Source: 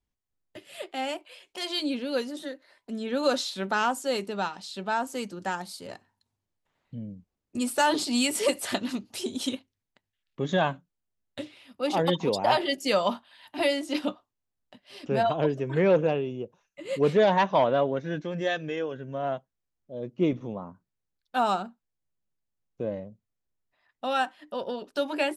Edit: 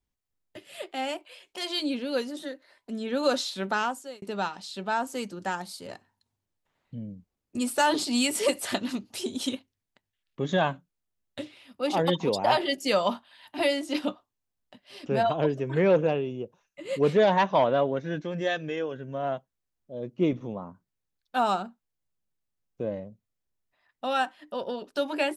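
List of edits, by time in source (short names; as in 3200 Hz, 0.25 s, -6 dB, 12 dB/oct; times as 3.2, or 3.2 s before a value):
3.71–4.22 fade out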